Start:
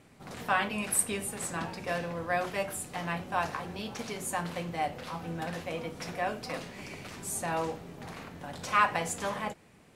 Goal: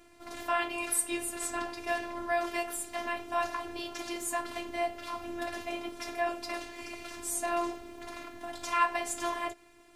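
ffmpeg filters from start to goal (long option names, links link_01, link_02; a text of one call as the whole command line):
ffmpeg -i in.wav -filter_complex "[0:a]asplit=2[link_01][link_02];[link_02]alimiter=limit=-23dB:level=0:latency=1:release=208,volume=1dB[link_03];[link_01][link_03]amix=inputs=2:normalize=0,afftfilt=real='hypot(re,im)*cos(PI*b)':imag='0':win_size=512:overlap=0.75,volume=-2dB" out.wav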